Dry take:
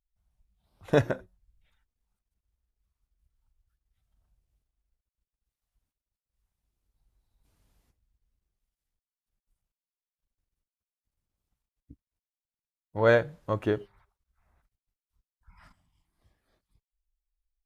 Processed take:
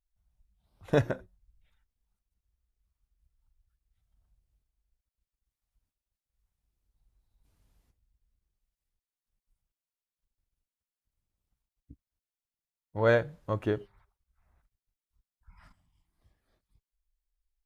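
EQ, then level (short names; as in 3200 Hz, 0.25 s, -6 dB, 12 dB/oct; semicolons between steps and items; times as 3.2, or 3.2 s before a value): low shelf 130 Hz +4.5 dB; -3.0 dB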